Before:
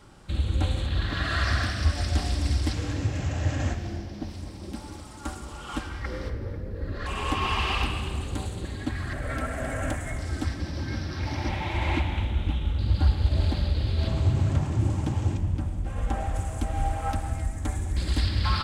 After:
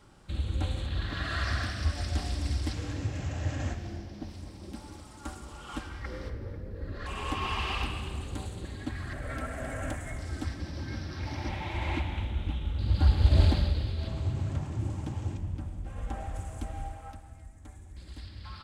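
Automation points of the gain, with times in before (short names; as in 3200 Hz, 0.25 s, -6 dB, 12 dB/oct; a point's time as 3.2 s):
12.71 s -5.5 dB
13.41 s +3.5 dB
14 s -8 dB
16.67 s -8 dB
17.25 s -19 dB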